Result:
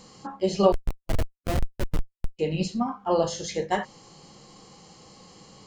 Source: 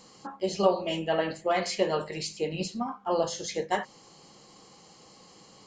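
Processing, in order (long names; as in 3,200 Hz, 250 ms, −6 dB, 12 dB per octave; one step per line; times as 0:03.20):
0:00.72–0:02.39: comparator with hysteresis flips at −21.5 dBFS
low-shelf EQ 130 Hz +10.5 dB
harmonic and percussive parts rebalanced harmonic +4 dB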